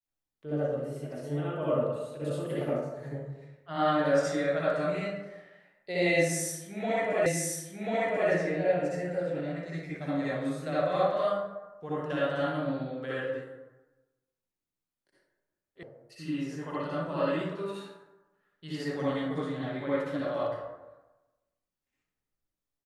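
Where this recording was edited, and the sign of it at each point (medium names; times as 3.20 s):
7.26 s: repeat of the last 1.04 s
15.83 s: sound stops dead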